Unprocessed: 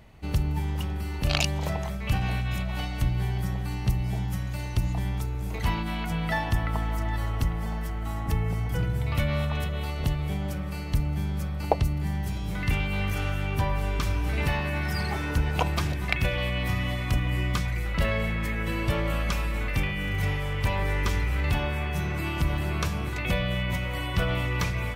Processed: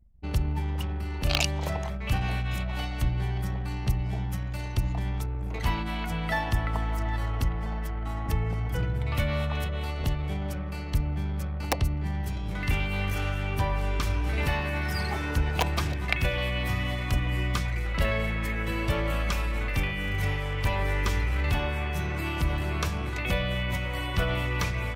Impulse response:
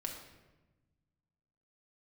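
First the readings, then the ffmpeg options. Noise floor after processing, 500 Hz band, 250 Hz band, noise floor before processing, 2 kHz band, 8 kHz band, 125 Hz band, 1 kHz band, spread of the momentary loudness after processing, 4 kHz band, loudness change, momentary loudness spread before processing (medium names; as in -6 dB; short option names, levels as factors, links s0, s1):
-32 dBFS, -0.5 dB, -2.0 dB, -32 dBFS, 0.0 dB, 0.0 dB, -1.5 dB, -0.5 dB, 4 LU, 0.0 dB, -1.0 dB, 4 LU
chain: -filter_complex "[0:a]acrossover=split=120|1500|2500[s0][s1][s2][s3];[s1]aeval=exprs='(mod(5.96*val(0)+1,2)-1)/5.96':c=same[s4];[s0][s4][s2][s3]amix=inputs=4:normalize=0,anlmdn=0.251,equalizer=f=160:w=1.5:g=-3.5"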